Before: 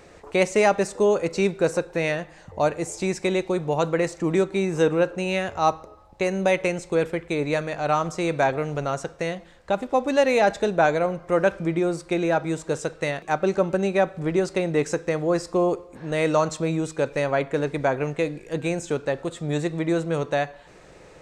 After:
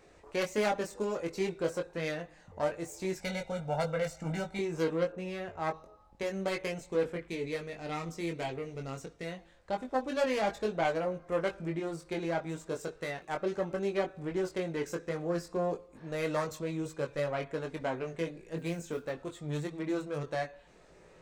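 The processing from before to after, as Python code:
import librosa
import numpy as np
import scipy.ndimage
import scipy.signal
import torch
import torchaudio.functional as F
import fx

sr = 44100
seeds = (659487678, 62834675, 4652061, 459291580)

y = fx.self_delay(x, sr, depth_ms=0.16)
y = fx.comb(y, sr, ms=1.4, depth=0.89, at=(3.19, 4.59))
y = fx.high_shelf(y, sr, hz=2800.0, db=-10.5, at=(5.1, 5.74))
y = fx.spec_box(y, sr, start_s=7.28, length_s=1.97, low_hz=480.0, high_hz=1800.0, gain_db=-7)
y = fx.mod_noise(y, sr, seeds[0], snr_db=31, at=(18.57, 19.09), fade=0.02)
y = fx.chorus_voices(y, sr, voices=4, hz=0.17, base_ms=21, depth_ms=2.7, mix_pct=40)
y = y * 10.0 ** (-7.5 / 20.0)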